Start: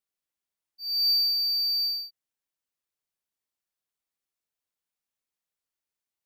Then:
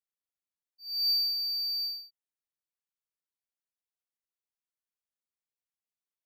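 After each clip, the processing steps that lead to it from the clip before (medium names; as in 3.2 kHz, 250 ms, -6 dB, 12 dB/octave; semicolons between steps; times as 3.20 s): upward expansion 1.5:1, over -36 dBFS; trim -3.5 dB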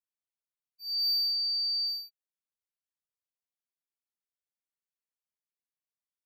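waveshaping leveller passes 2; trim -3.5 dB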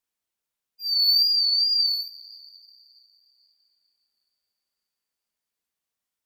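wow and flutter 67 cents; two-slope reverb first 0.37 s, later 3.5 s, from -18 dB, DRR 9.5 dB; trim +8.5 dB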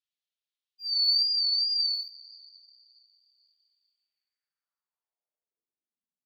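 band-pass sweep 3.5 kHz -> 210 Hz, 3.89–6.12 s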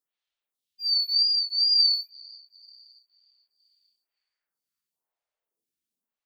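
lamp-driven phase shifter 1 Hz; trim +8 dB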